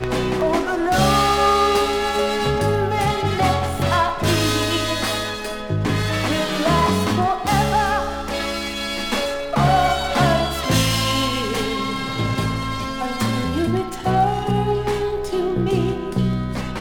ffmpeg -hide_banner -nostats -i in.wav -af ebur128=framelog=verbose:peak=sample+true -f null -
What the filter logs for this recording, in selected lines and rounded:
Integrated loudness:
  I:         -20.0 LUFS
  Threshold: -30.0 LUFS
Loudness range:
  LRA:         3.2 LU
  Threshold: -40.1 LUFS
  LRA low:   -21.7 LUFS
  LRA high:  -18.4 LUFS
Sample peak:
  Peak:       -4.3 dBFS
True peak:
  Peak:       -4.3 dBFS